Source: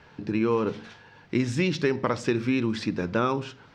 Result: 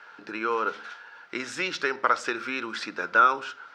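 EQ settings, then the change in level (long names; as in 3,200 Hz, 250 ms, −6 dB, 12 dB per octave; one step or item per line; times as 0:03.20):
high-pass filter 590 Hz 12 dB per octave
parametric band 1,400 Hz +14.5 dB 0.33 octaves
+1.0 dB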